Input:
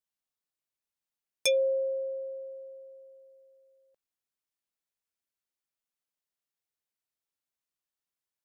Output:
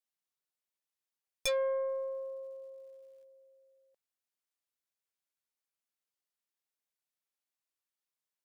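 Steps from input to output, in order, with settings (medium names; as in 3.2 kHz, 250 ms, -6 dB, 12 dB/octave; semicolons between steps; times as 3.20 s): bass shelf 170 Hz -10.5 dB; 1.87–3.23 s: crackle 450 per s -64 dBFS; valve stage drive 27 dB, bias 0.5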